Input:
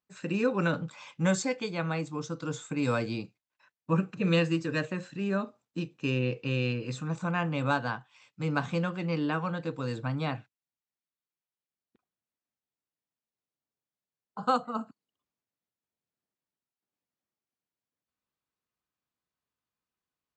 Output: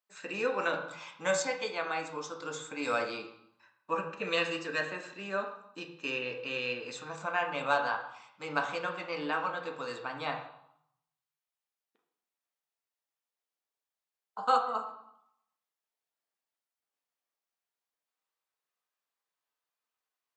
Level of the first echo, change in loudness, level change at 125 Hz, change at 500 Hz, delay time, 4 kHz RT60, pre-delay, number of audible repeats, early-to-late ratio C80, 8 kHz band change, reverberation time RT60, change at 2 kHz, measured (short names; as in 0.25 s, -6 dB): none, -2.5 dB, -19.5 dB, -1.5 dB, none, 0.65 s, 4 ms, none, 11.0 dB, 0.0 dB, 0.75 s, +1.5 dB